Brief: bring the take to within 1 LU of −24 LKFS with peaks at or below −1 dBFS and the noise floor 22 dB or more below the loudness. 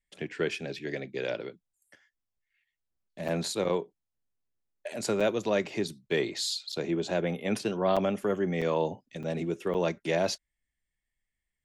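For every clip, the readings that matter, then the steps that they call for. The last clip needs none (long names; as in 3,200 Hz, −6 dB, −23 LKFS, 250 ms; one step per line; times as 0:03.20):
number of dropouts 7; longest dropout 6.2 ms; integrated loudness −31.0 LKFS; sample peak −14.5 dBFS; target loudness −24.0 LKFS
→ repair the gap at 0:03.28/0:05.20/0:06.72/0:07.96/0:08.61/0:09.23/0:09.74, 6.2 ms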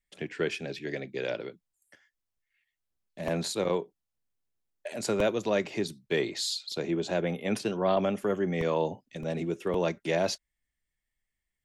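number of dropouts 0; integrated loudness −31.0 LKFS; sample peak −14.0 dBFS; target loudness −24.0 LKFS
→ level +7 dB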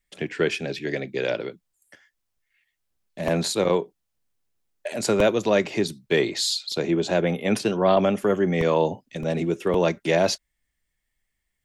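integrated loudness −24.0 LKFS; sample peak −7.0 dBFS; background noise floor −79 dBFS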